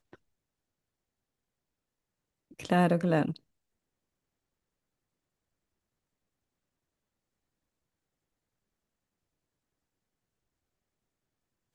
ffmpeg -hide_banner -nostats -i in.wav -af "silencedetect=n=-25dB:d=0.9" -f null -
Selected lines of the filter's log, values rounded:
silence_start: 0.00
silence_end: 2.65 | silence_duration: 2.65
silence_start: 3.30
silence_end: 11.75 | silence_duration: 8.45